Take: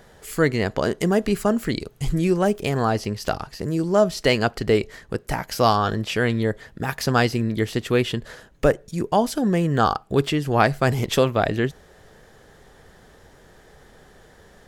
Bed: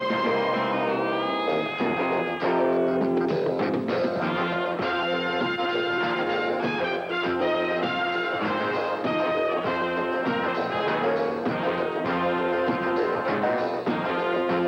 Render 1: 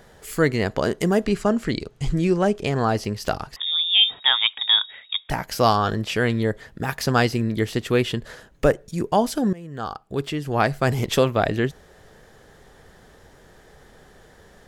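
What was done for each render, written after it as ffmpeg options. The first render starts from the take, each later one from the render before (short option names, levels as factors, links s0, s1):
-filter_complex "[0:a]asettb=1/sr,asplit=3[s0][s1][s2];[s0]atrim=end=1.244[s3];[s1]atrim=start=1.24:end=2.89,asetpts=PTS-STARTPTS,afade=t=in:d=0.004:c=qsin,afade=t=out:st=1.646:d=0.004:c=qsin,lowpass=7300[s4];[s2]atrim=start=2.886[s5];[s3][s4]acrossfade=d=0.004:c1=hsin:c2=qsin[s6];[s6][s5]acrossfade=d=0.004:c1=qsin:c2=hsin,asettb=1/sr,asplit=3[s7][s8][s9];[s7]atrim=end=3.564[s10];[s8]atrim=start=3.56:end=5.3,asetpts=PTS-STARTPTS,afade=t=in:d=0.004:c=qsin,afade=t=out:st=1.736:d=0.004:c=qsin,lowpass=f=3200:t=q:w=0.5098,lowpass=f=3200:t=q:w=0.6013,lowpass=f=3200:t=q:w=0.9,lowpass=f=3200:t=q:w=2.563,afreqshift=-3800[s11];[s9]atrim=start=5.296[s12];[s10][s11]acrossfade=d=0.004:c1=hsin:c2=qsin[s13];[s13][s12]acrossfade=d=0.004:c1=qsin:c2=hsin,asplit=2[s14][s15];[s14]atrim=end=9.53,asetpts=PTS-STARTPTS,afade=t=out:st=9.526:d=0.004:c=hsin:silence=0.0841395[s16];[s15]atrim=start=9.53,asetpts=PTS-STARTPTS,afade=t=in:d=1.5:silence=0.0841395[s17];[s16][s17]concat=n=2:v=0:a=1"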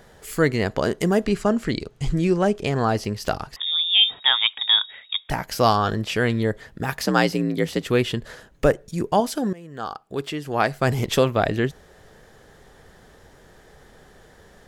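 -filter_complex "[0:a]asettb=1/sr,asplit=3[s0][s1][s2];[s0]atrim=end=7.034[s3];[s1]atrim=start=7.03:end=7.86,asetpts=PTS-STARTPTS,afade=t=in:d=0.004:c=qsin,afade=t=out:st=0.826:d=0.004:c=qsin,afreqshift=56[s4];[s2]atrim=start=7.856[s5];[s3][s4]acrossfade=d=0.004:c1=hsin:c2=qsin[s6];[s6][s5]acrossfade=d=0.004:c1=qsin:c2=hsin,asettb=1/sr,asplit=3[s7][s8][s9];[s7]atrim=end=9.204[s10];[s8]atrim=start=9.2:end=10.81,asetpts=PTS-STARTPTS,afade=t=in:d=0.004:c=qsin,afade=t=out:st=1.606:d=0.004:c=qsin,lowshelf=f=140:g=-11[s11];[s9]atrim=start=10.806[s12];[s10][s11]acrossfade=d=0.004:c1=hsin:c2=qsin[s13];[s13][s12]acrossfade=d=0.004:c1=qsin:c2=hsin"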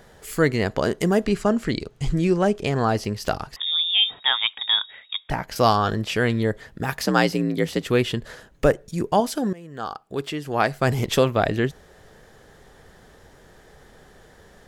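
-filter_complex "[0:a]asettb=1/sr,asplit=3[s0][s1][s2];[s0]atrim=end=3.914[s3];[s1]atrim=start=3.91:end=5.56,asetpts=PTS-STARTPTS,afade=t=in:d=0.004:c=qsin,afade=t=out:st=1.646:d=0.004:c=qsin,highshelf=f=5300:g=-10.5[s4];[s2]atrim=start=5.556[s5];[s3][s4]acrossfade=d=0.004:c1=hsin:c2=qsin[s6];[s6][s5]acrossfade=d=0.004:c1=qsin:c2=hsin"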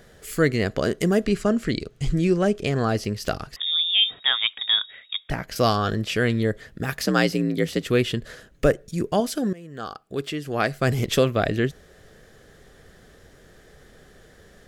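-af "equalizer=f=900:t=o:w=0.47:g=-10.5"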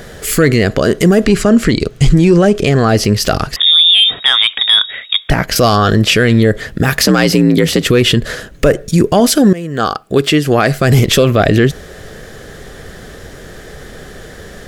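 -af "acontrast=68,alimiter=level_in=3.98:limit=0.891:release=50:level=0:latency=1"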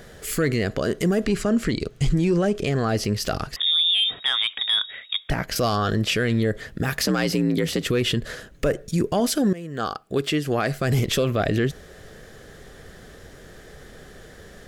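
-af "volume=0.251"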